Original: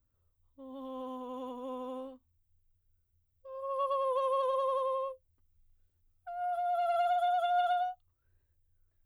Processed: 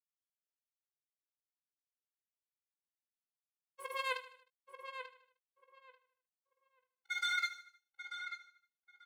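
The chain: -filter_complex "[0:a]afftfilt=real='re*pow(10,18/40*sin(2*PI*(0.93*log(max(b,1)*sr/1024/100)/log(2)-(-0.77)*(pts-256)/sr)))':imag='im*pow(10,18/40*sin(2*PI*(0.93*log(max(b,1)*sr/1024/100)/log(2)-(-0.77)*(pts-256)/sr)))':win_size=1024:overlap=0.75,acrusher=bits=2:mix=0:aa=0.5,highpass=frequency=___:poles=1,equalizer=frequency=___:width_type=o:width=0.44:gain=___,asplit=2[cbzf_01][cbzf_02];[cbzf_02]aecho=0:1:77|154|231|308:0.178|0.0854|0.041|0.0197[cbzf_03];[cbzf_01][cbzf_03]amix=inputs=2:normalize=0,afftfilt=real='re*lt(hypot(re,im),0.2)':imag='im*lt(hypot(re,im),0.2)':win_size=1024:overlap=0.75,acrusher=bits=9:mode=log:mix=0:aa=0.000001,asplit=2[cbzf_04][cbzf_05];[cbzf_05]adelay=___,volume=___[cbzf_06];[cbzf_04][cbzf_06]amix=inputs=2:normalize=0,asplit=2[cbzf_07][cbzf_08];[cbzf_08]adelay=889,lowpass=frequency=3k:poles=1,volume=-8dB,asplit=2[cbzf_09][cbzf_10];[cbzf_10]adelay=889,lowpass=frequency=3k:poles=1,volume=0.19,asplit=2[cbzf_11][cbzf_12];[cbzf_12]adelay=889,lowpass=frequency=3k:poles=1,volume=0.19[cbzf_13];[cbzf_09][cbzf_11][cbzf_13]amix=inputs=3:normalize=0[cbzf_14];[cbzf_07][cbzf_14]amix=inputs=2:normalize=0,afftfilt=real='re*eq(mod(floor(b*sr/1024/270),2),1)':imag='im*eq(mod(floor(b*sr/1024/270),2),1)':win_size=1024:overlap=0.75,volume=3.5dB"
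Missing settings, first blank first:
58, 81, -13, 18, -11dB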